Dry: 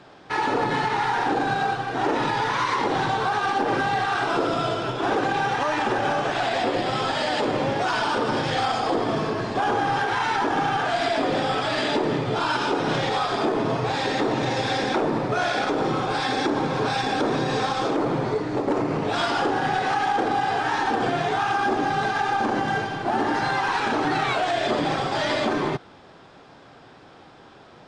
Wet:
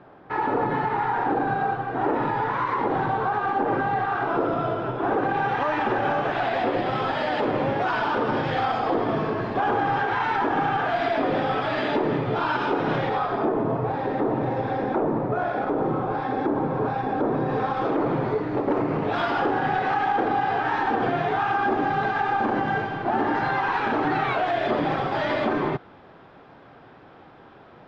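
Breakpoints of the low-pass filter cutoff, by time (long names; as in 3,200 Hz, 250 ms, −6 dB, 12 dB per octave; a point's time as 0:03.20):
0:05.16 1,500 Hz
0:05.59 2,400 Hz
0:12.87 2,400 Hz
0:13.65 1,100 Hz
0:17.33 1,100 Hz
0:18.10 2,400 Hz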